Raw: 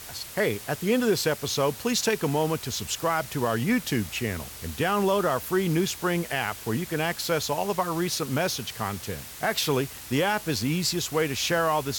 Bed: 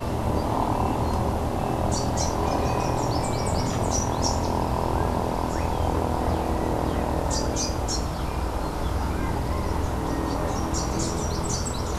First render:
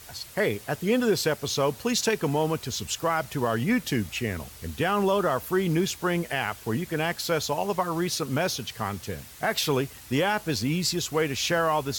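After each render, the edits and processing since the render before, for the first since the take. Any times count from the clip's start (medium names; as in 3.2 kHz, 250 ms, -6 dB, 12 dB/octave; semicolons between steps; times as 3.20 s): noise reduction 6 dB, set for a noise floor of -42 dBFS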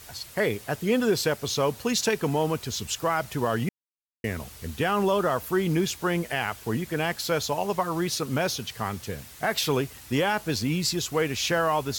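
3.69–4.24 s: mute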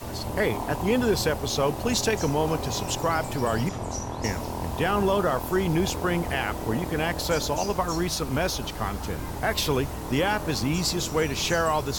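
add bed -7.5 dB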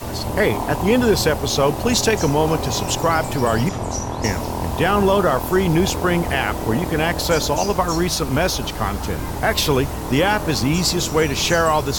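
trim +7 dB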